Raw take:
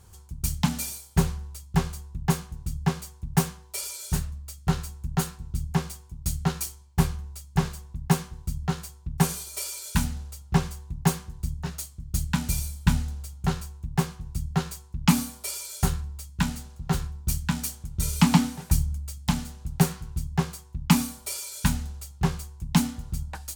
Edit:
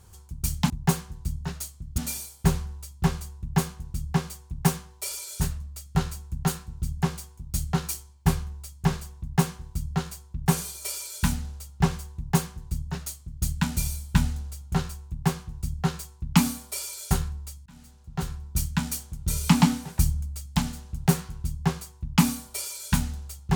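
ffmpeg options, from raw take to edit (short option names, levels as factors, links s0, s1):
-filter_complex "[0:a]asplit=4[s0][s1][s2][s3];[s0]atrim=end=0.702[s4];[s1]atrim=start=10.878:end=12.162[s5];[s2]atrim=start=0.698:end=16.38,asetpts=PTS-STARTPTS,afade=t=out:st=15.678:d=0.004:c=hsin[s6];[s3]atrim=start=16.38,asetpts=PTS-STARTPTS,afade=t=in:d=0.9[s7];[s4][s5]acrossfade=d=0.004:c1=hsin:c2=hsin[s8];[s6][s7]concat=n=2:v=0:a=1[s9];[s8][s9]acrossfade=d=0.004:c1=hsin:c2=hsin"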